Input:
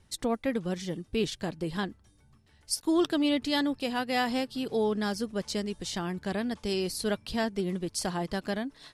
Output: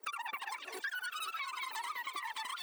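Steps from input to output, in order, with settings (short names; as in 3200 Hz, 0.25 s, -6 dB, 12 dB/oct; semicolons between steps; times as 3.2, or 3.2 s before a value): pitch shift by moving bins +7 st; recorder AGC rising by 33 dB/s; HPF 88 Hz 24 dB/oct; bell 330 Hz +4 dB 1.4 oct; notches 50/100/150/200/250/300/350/400 Hz; wide varispeed 3.4×; on a send: delay with a stepping band-pass 0.203 s, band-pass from 3100 Hz, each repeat 0.7 oct, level -2.5 dB; on the sum: compressor 16:1, threshold -33 dBFS, peak gain reduction 13 dB; lo-fi delay 0.514 s, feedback 35%, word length 9-bit, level -14 dB; gain -3.5 dB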